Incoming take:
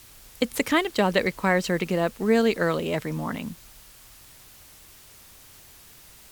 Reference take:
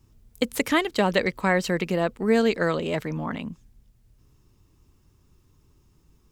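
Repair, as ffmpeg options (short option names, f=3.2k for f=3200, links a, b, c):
-af "afwtdn=0.0032"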